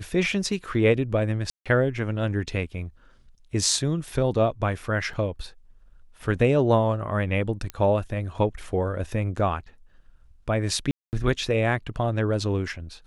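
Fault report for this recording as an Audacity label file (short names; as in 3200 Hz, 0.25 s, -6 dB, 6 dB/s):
1.500000	1.660000	gap 0.156 s
5.130000	5.130000	gap 3.8 ms
7.700000	7.700000	pop -17 dBFS
10.910000	11.130000	gap 0.219 s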